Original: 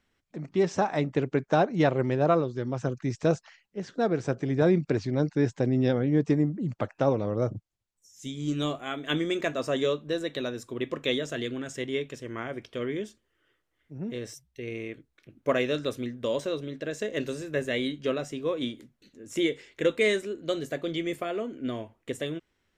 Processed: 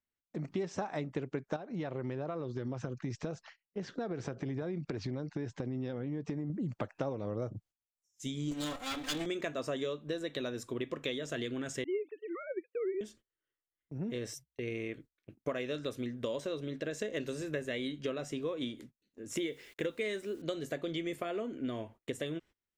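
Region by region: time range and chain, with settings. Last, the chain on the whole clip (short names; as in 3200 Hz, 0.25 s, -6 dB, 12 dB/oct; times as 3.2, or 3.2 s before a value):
1.56–6.5 LPF 5800 Hz + compressor, threshold -30 dBFS
8.51–9.26 minimum comb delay 3.8 ms + high shelf 3600 Hz +9 dB
11.84–13.01 sine-wave speech + dynamic EQ 330 Hz, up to +6 dB, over -41 dBFS, Q 1.2 + expander -46 dBFS
19.36–20.42 bell 7100 Hz -3 dB 0.32 oct + requantised 10-bit, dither none
whole clip: gate -51 dBFS, range -23 dB; compressor 6:1, threshold -33 dBFS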